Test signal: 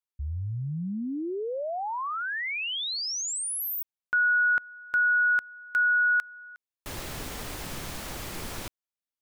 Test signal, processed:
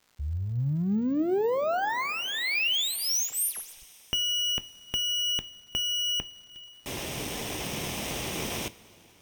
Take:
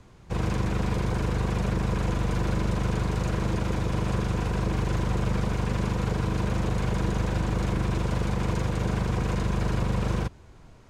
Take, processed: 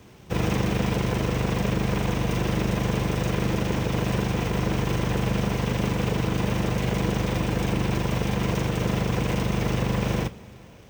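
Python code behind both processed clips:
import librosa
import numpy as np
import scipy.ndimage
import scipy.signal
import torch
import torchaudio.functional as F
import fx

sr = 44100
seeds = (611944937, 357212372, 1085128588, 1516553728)

p1 = fx.lower_of_two(x, sr, delay_ms=0.34)
p2 = fx.highpass(p1, sr, hz=160.0, slope=6)
p3 = fx.rider(p2, sr, range_db=4, speed_s=2.0)
p4 = p2 + (p3 * 10.0 ** (-1.0 / 20.0))
p5 = fx.rev_double_slope(p4, sr, seeds[0], early_s=0.23, late_s=4.3, knee_db=-19, drr_db=12.0)
p6 = fx.dmg_crackle(p5, sr, seeds[1], per_s=260.0, level_db=-47.0)
y = np.repeat(scipy.signal.resample_poly(p6, 1, 2), 2)[:len(p6)]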